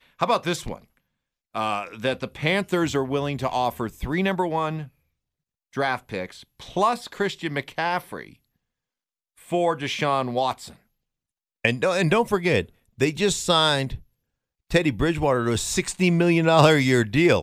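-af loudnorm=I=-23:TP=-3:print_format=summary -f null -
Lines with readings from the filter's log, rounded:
Input Integrated:    -22.3 LUFS
Input True Peak:      -1.4 dBTP
Input LRA:             8.1 LU
Input Threshold:     -32.9 LUFS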